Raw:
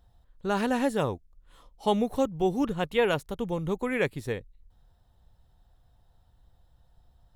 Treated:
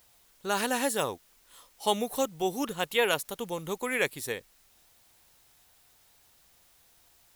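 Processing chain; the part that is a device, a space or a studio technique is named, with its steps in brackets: turntable without a phono preamp (RIAA curve recording; white noise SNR 30 dB)

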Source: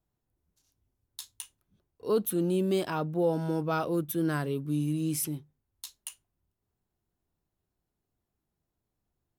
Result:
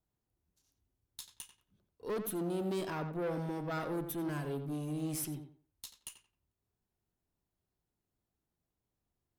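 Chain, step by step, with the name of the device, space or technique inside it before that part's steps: rockabilly slapback (valve stage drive 29 dB, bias 0.3; tape echo 88 ms, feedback 27%, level -7 dB, low-pass 2.8 kHz); trim -3.5 dB

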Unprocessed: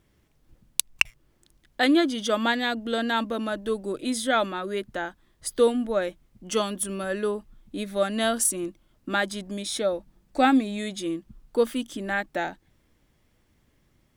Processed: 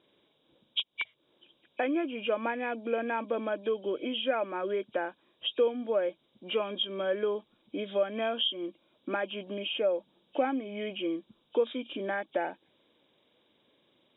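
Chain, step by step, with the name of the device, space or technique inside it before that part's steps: hearing aid with frequency lowering (knee-point frequency compression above 2.2 kHz 4:1; compression 3:1, threshold -30 dBFS, peak gain reduction 12.5 dB; cabinet simulation 370–5000 Hz, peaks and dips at 530 Hz +3 dB, 760 Hz -4 dB, 1.3 kHz -7 dB, 1.9 kHz -9 dB, 2.6 kHz -10 dB, 4.5 kHz -10 dB); trim +4.5 dB

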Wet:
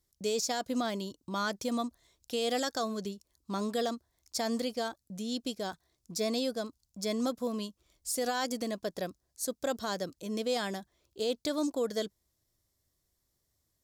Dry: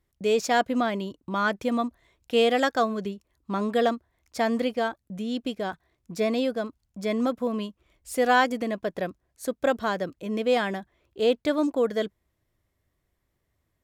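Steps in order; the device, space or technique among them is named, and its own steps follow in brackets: over-bright horn tweeter (resonant high shelf 3.5 kHz +11.5 dB, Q 1.5; peak limiter -16.5 dBFS, peak gain reduction 10.5 dB); trim -6 dB

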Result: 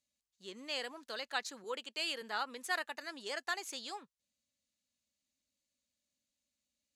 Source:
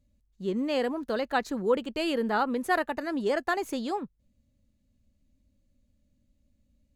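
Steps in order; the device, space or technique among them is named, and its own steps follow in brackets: 1.64–2.22 s: high-pass 210 Hz; piezo pickup straight into a mixer (low-pass 6.5 kHz 12 dB/octave; differentiator); trim +6 dB

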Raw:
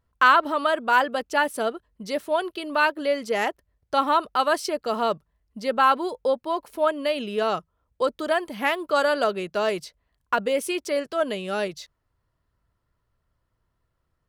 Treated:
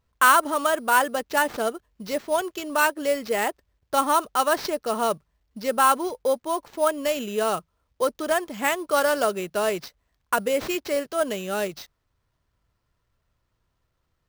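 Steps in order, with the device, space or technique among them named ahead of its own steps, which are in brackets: early companding sampler (sample-rate reducer 9.9 kHz, jitter 0%; companded quantiser 8-bit)

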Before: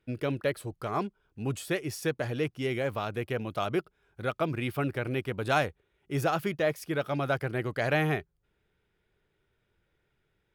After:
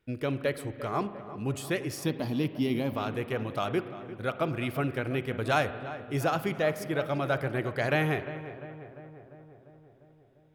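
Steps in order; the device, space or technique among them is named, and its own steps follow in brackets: 2.05–2.93 s: FFT filter 130 Hz 0 dB, 250 Hz +10 dB, 470 Hz -6 dB, 1 kHz +3 dB, 1.5 kHz -11 dB, 4.8 kHz +7 dB, 7.3 kHz -12 dB, 13 kHz +9 dB; dub delay into a spring reverb (filtered feedback delay 348 ms, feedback 66%, low-pass 1.8 kHz, level -13 dB; spring tank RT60 1.9 s, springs 44 ms, chirp 45 ms, DRR 12.5 dB)

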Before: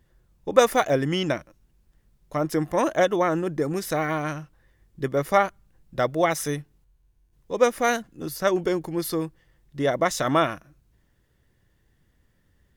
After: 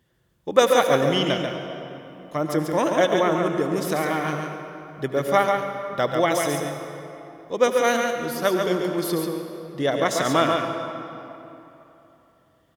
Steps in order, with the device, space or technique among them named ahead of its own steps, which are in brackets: PA in a hall (high-pass 110 Hz 12 dB/octave; peaking EQ 3.2 kHz +6.5 dB 0.32 oct; delay 140 ms -5 dB; reverberation RT60 3.2 s, pre-delay 71 ms, DRR 6.5 dB)

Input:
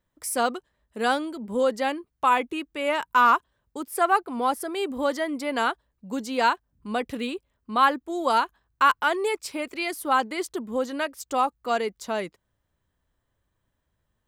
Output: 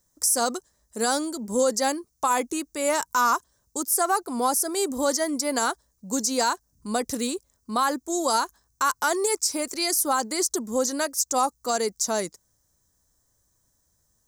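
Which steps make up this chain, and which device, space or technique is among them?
over-bright horn tweeter (resonant high shelf 4.2 kHz +13.5 dB, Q 3; peak limiter -14.5 dBFS, peak gain reduction 11 dB); trim +2 dB

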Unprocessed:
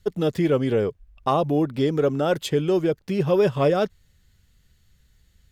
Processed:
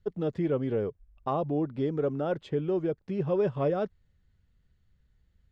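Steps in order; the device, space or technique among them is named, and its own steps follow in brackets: 2.32–2.78 s: treble shelf 7 kHz -9 dB; through cloth (low-pass 6.9 kHz 12 dB/octave; treble shelf 2.6 kHz -15 dB); trim -7 dB

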